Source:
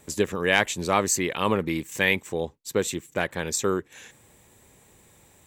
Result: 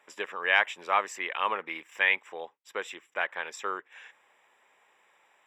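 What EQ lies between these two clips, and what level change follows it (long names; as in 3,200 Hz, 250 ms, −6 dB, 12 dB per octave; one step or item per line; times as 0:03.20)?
Savitzky-Golay smoothing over 25 samples
Chebyshev high-pass filter 970 Hz, order 2
0.0 dB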